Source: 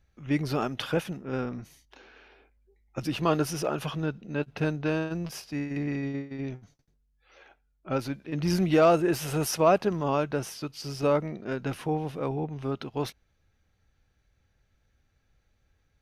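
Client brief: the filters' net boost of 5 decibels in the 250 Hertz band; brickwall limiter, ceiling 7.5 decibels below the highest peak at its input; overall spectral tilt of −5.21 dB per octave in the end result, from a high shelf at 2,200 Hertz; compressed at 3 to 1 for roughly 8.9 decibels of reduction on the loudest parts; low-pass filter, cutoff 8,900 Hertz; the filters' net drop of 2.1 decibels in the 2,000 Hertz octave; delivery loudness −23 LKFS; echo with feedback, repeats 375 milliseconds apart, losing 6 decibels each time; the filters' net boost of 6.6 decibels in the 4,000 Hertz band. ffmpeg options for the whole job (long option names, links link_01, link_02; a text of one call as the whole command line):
ffmpeg -i in.wav -af "lowpass=8900,equalizer=frequency=250:width_type=o:gain=7,equalizer=frequency=2000:width_type=o:gain=-9,highshelf=frequency=2200:gain=6.5,equalizer=frequency=4000:width_type=o:gain=5,acompressor=threshold=-26dB:ratio=3,alimiter=limit=-21.5dB:level=0:latency=1,aecho=1:1:375|750|1125|1500|1875|2250:0.501|0.251|0.125|0.0626|0.0313|0.0157,volume=8.5dB" out.wav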